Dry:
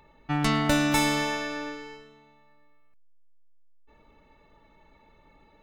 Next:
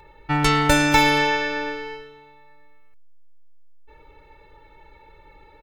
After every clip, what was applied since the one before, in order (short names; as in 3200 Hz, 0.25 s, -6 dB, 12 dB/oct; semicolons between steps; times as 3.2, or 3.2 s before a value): comb 2.2 ms, depth 96%; gain +4.5 dB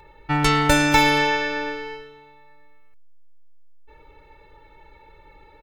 nothing audible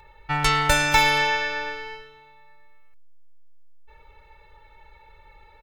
bell 270 Hz -14 dB 1.3 oct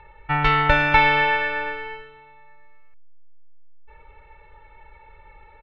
LPF 2900 Hz 24 dB/oct; gain +3 dB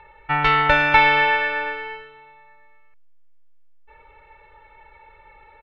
low shelf 190 Hz -9 dB; gain +2 dB